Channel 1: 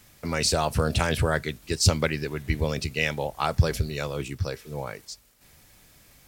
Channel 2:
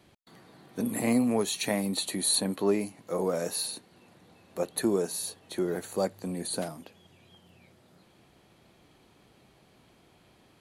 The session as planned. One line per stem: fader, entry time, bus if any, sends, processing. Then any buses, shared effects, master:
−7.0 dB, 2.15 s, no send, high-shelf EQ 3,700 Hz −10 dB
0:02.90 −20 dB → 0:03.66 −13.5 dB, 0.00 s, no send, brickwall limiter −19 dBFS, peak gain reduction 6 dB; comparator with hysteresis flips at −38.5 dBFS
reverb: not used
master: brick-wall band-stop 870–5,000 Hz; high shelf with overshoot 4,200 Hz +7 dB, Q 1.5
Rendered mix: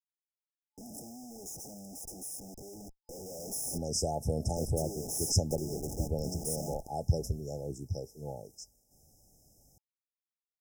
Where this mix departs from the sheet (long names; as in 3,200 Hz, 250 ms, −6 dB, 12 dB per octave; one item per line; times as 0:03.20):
stem 1: entry 2.15 s → 3.50 s
stem 2 −20.0 dB → −13.0 dB